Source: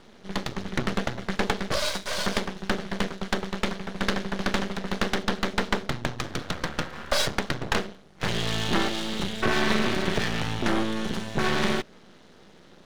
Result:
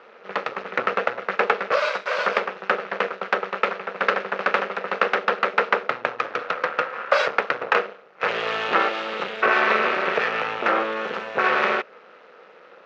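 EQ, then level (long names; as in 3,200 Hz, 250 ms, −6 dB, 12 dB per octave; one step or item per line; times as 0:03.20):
loudspeaker in its box 250–5,500 Hz, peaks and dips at 490 Hz +8 dB, 1,300 Hz +9 dB, 2,600 Hz +10 dB
flat-topped bell 980 Hz +11 dB 2.7 octaves
−6.5 dB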